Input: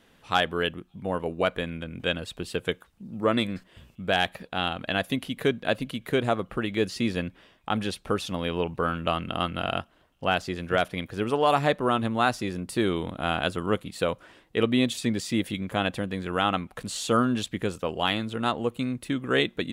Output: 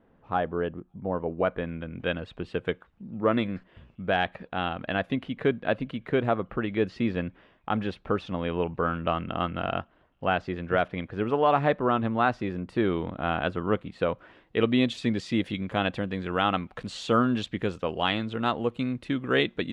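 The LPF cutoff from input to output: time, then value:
1.04 s 1000 Hz
1.97 s 2200 Hz
14.1 s 2200 Hz
14.74 s 3900 Hz

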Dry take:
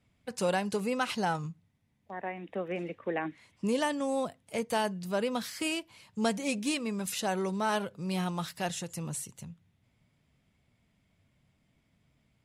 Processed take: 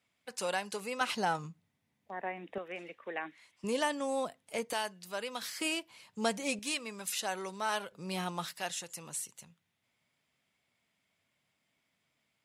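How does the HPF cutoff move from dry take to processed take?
HPF 6 dB/oct
960 Hz
from 1.01 s 310 Hz
from 2.58 s 1200 Hz
from 3.64 s 440 Hz
from 4.73 s 1400 Hz
from 5.42 s 390 Hz
from 6.59 s 1000 Hz
from 7.92 s 390 Hz
from 8.54 s 1000 Hz

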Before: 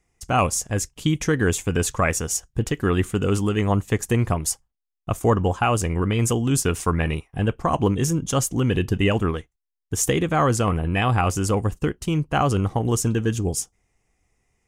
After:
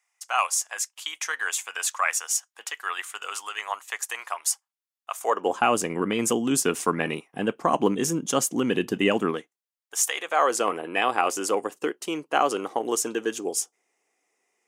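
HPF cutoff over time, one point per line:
HPF 24 dB/oct
5.14 s 870 Hz
5.6 s 210 Hz
9.37 s 210 Hz
10.05 s 850 Hz
10.62 s 330 Hz

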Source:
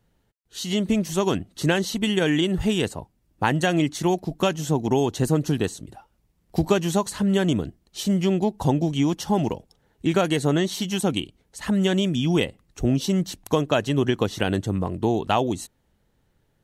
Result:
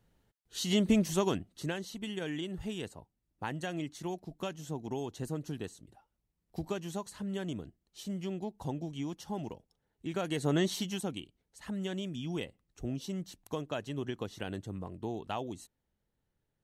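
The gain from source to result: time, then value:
1.04 s -4 dB
1.78 s -16 dB
10.08 s -16 dB
10.68 s -5 dB
11.15 s -15.5 dB

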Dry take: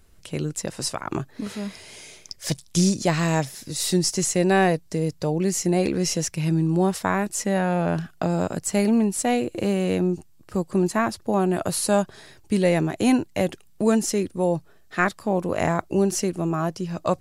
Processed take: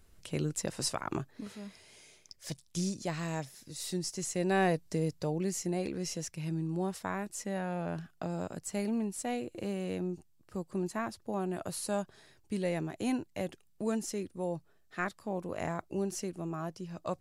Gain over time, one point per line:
1.03 s -5.5 dB
1.57 s -14 dB
4.17 s -14 dB
4.87 s -6 dB
5.85 s -13 dB

